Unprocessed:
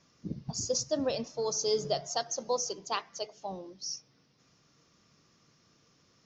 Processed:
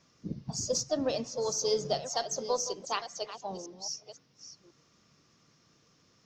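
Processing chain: reverse delay 0.523 s, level -12 dB; added harmonics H 4 -34 dB, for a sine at -16 dBFS; harmoniser +3 st -16 dB

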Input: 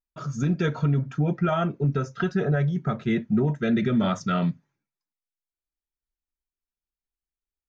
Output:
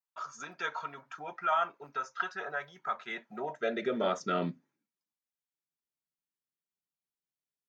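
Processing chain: high-pass sweep 970 Hz -> 150 Hz, 3.05–5.38; gain -5 dB

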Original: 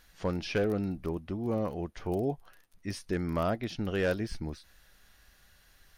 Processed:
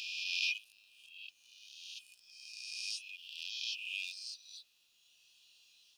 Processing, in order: spectral swells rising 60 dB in 2.00 s; air absorption 99 m; in parallel at -12 dB: soft clip -29.5 dBFS, distortion -9 dB; on the sum: reverb removal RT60 1.8 s; brick-wall FIR high-pass 2400 Hz; companded quantiser 8-bit; gain +5.5 dB

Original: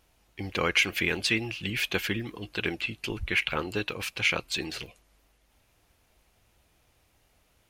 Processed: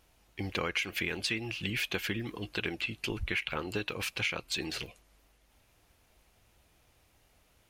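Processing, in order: compressor 4:1, threshold -30 dBFS, peak gain reduction 10.5 dB

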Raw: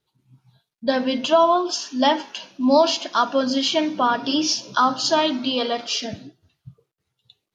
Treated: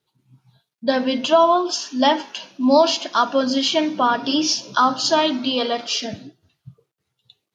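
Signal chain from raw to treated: HPF 89 Hz; gain +1.5 dB

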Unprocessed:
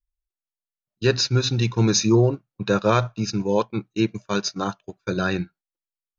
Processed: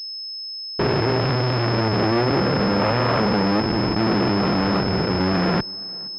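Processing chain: stepped spectrum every 0.4 s; air absorption 79 m; in parallel at -5 dB: Schmitt trigger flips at -32.5 dBFS; on the sum: upward compressor, threshold -31 dBFS; fuzz box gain 43 dB, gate -42 dBFS; added harmonics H 3 -15 dB, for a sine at -9 dBFS; HPF 200 Hz 6 dB/oct; on a send: tape echo 0.471 s, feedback 55%, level -22.5 dB, low-pass 2000 Hz; on the sum: pulse-width modulation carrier 5200 Hz

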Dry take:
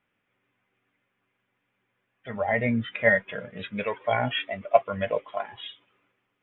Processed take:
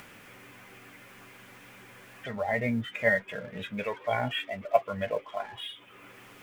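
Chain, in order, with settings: G.711 law mismatch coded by mu; upward compressor, threshold -29 dBFS; gain -4.5 dB

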